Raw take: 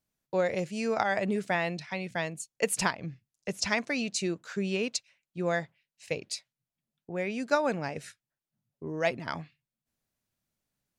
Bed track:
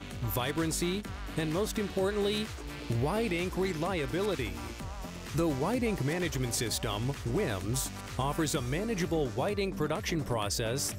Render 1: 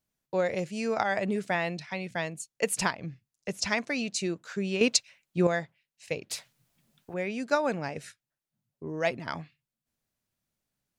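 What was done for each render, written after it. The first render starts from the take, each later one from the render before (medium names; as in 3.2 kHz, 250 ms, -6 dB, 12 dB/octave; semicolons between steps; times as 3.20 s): 4.81–5.47 s: gain +8.5 dB; 6.30–7.14 s: spectrum-flattening compressor 2:1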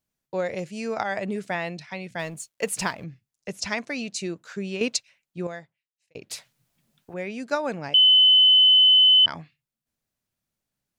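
2.19–3.04 s: companding laws mixed up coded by mu; 4.57–6.15 s: fade out; 7.94–9.26 s: bleep 3.03 kHz -12 dBFS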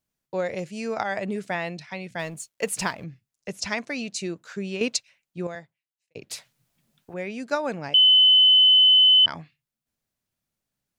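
5.55–6.24 s: three bands expanded up and down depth 40%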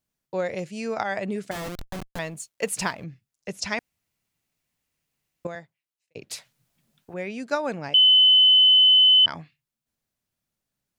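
1.51–2.19 s: Schmitt trigger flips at -33.5 dBFS; 3.79–5.45 s: room tone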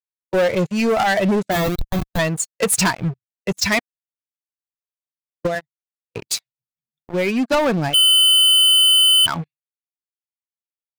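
expander on every frequency bin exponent 1.5; waveshaping leveller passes 5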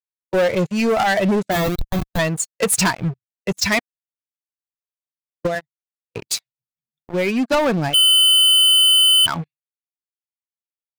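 no audible change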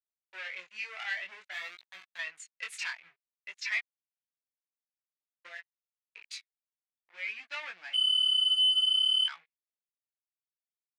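ladder band-pass 2.5 kHz, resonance 45%; chorus 0.52 Hz, delay 16.5 ms, depth 7.6 ms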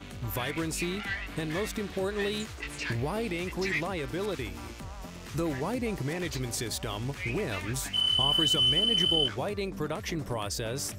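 add bed track -1.5 dB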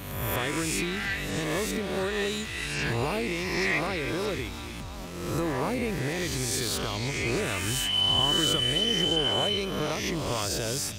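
reverse spectral sustain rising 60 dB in 1.17 s; repeats whose band climbs or falls 315 ms, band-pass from 3.3 kHz, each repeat 0.7 oct, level -5 dB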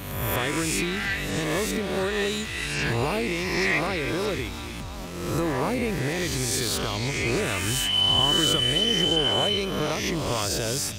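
trim +3 dB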